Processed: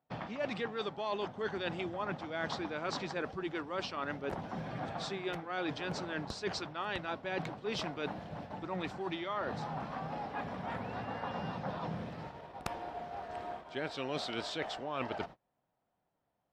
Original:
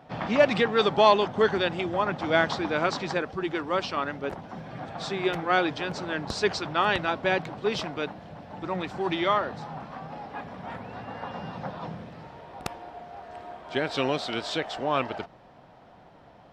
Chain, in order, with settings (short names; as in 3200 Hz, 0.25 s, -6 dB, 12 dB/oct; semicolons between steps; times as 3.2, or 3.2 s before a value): gate -44 dBFS, range -30 dB; reverse; compressor 8:1, threshold -34 dBFS, peak gain reduction 20 dB; reverse